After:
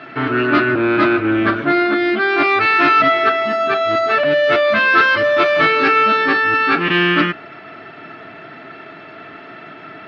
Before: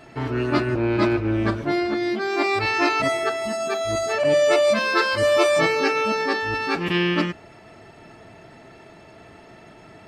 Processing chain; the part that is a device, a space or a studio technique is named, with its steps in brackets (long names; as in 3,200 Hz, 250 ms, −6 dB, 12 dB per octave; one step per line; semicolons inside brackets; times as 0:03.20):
overdrive pedal into a guitar cabinet (mid-hump overdrive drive 19 dB, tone 4,100 Hz, clips at −6 dBFS; loudspeaker in its box 82–3,800 Hz, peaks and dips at 150 Hz +5 dB, 280 Hz +6 dB, 520 Hz −5 dB, 900 Hz −7 dB, 1,400 Hz +7 dB)